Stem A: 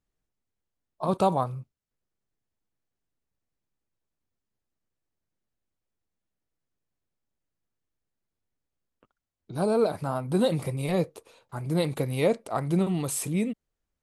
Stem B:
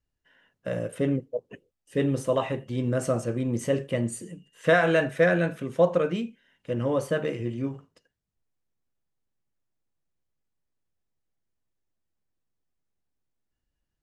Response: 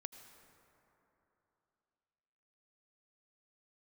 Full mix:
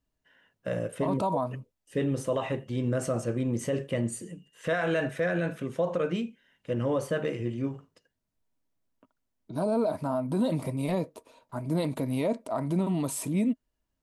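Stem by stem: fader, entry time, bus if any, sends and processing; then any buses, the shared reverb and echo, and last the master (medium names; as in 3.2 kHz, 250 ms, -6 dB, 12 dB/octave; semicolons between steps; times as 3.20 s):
-4.0 dB, 0.00 s, no send, small resonant body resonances 260/630/950 Hz, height 12 dB
-1.0 dB, 0.00 s, no send, none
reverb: none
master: peak limiter -19 dBFS, peak gain reduction 10 dB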